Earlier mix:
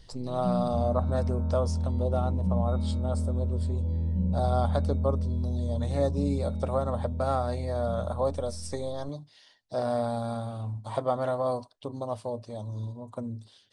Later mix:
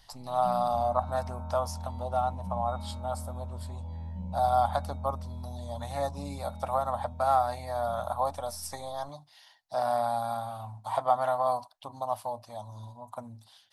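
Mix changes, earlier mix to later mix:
speech: remove elliptic low-pass filter 9,100 Hz, stop band 60 dB
master: add low shelf with overshoot 580 Hz −10 dB, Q 3

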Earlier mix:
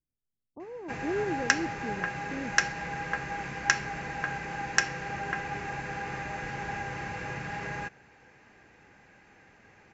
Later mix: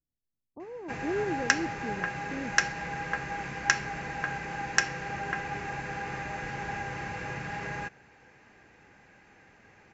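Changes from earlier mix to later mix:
nothing changed

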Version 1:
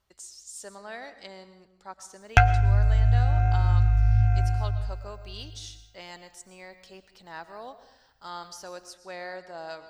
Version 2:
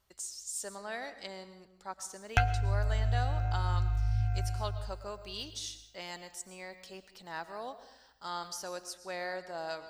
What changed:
background −9.5 dB
master: add high-shelf EQ 8,700 Hz +8.5 dB

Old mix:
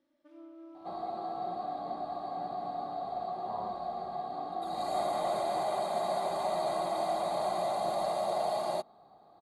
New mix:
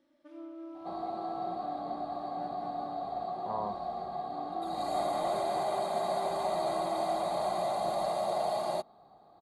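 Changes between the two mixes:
speech +7.0 dB
first sound +5.5 dB
second sound: add low-shelf EQ 110 Hz +4.5 dB

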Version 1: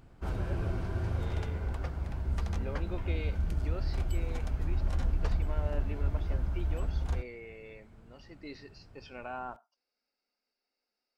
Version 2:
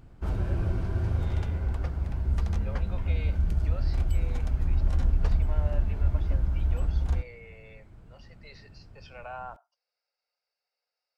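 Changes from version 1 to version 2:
speech: add Butterworth high-pass 480 Hz 48 dB per octave
master: add low-shelf EQ 240 Hz +6 dB

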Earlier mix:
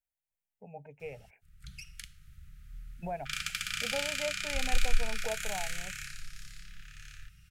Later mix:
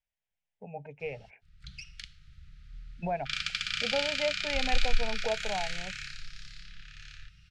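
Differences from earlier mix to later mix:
speech +5.0 dB
master: add low-pass with resonance 4,400 Hz, resonance Q 1.9

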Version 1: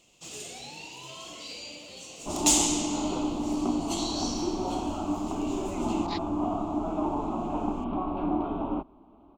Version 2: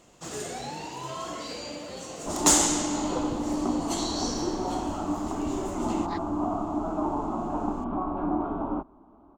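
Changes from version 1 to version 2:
first sound +9.5 dB
master: add high shelf with overshoot 2,100 Hz −7 dB, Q 3

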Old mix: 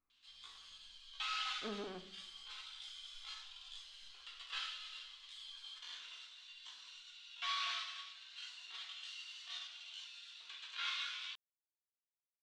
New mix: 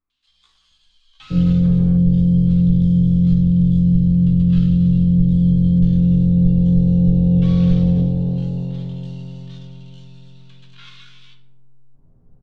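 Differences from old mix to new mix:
first sound: send −8.0 dB
second sound: unmuted
master: add low-shelf EQ 280 Hz +8 dB

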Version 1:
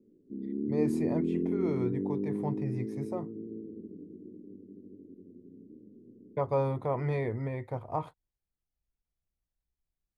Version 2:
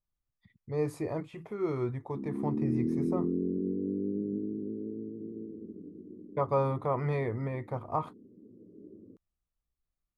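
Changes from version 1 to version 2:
background: entry +1.85 s
master: add parametric band 1,200 Hz +8.5 dB 0.34 octaves

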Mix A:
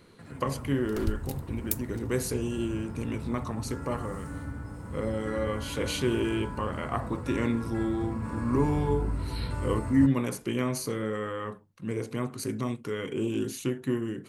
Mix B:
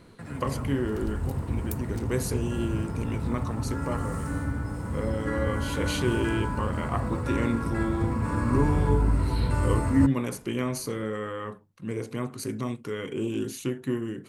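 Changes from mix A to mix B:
first sound +7.5 dB
second sound −8.0 dB

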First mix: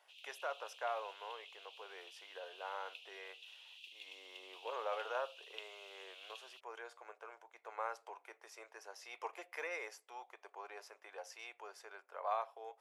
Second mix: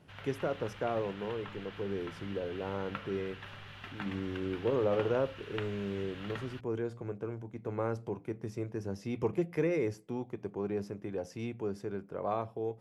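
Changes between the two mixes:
background: remove Chebyshev high-pass with heavy ripple 2,500 Hz, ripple 3 dB
master: remove inverse Chebyshev high-pass filter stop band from 210 Hz, stop band 60 dB

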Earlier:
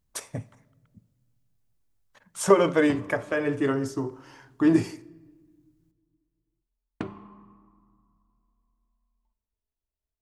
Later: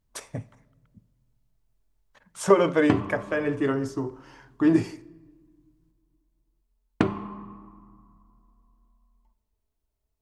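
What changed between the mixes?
speech: add high-shelf EQ 7,200 Hz −7.5 dB
background +11.0 dB

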